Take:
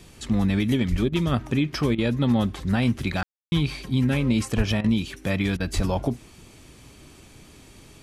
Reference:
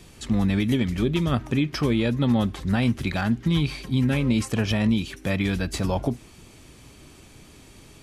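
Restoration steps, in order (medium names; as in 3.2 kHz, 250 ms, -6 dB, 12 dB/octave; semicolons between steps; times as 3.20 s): clip repair -12.5 dBFS; 0.90–1.02 s: high-pass 140 Hz 24 dB/octave; 4.56–4.68 s: high-pass 140 Hz 24 dB/octave; 5.75–5.87 s: high-pass 140 Hz 24 dB/octave; room tone fill 3.23–3.52 s; interpolate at 1.09/1.95/4.81/5.57 s, 31 ms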